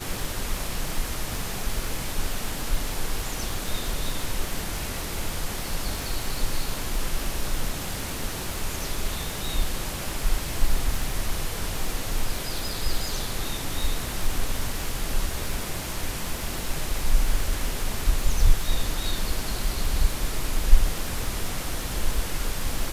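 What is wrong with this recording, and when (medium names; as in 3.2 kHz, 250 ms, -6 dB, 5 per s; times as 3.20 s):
crackle 130 per s -31 dBFS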